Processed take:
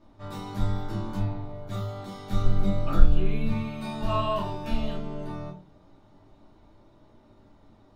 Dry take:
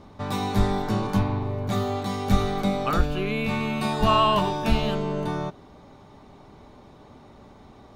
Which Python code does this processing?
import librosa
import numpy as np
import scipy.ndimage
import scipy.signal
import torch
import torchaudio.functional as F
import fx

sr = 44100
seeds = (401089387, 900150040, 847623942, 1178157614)

y = fx.low_shelf(x, sr, hz=210.0, db=12.0, at=(2.44, 3.51))
y = fx.room_shoebox(y, sr, seeds[0], volume_m3=130.0, walls='furnished', distance_m=2.7)
y = y * 10.0 ** (-16.0 / 20.0)